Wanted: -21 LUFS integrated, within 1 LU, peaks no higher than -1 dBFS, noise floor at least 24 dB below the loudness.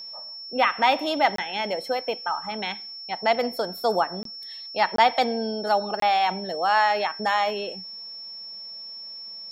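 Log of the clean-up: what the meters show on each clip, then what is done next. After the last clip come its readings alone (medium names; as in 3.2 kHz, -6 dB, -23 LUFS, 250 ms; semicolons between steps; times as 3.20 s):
dropouts 4; longest dropout 23 ms; steady tone 5.4 kHz; tone level -36 dBFS; loudness -24.5 LUFS; peak level -6.0 dBFS; loudness target -21.0 LUFS
-> interpolate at 1.36/4.23/4.96/6.00 s, 23 ms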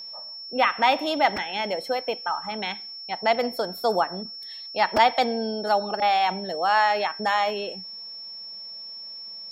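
dropouts 0; steady tone 5.4 kHz; tone level -36 dBFS
-> band-stop 5.4 kHz, Q 30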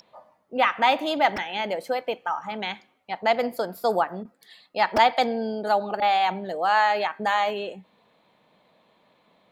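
steady tone not found; loudness -24.5 LUFS; peak level -6.0 dBFS; loudness target -21.0 LUFS
-> trim +3.5 dB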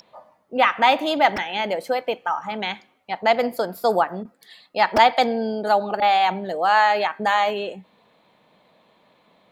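loudness -21.0 LUFS; peak level -2.5 dBFS; noise floor -61 dBFS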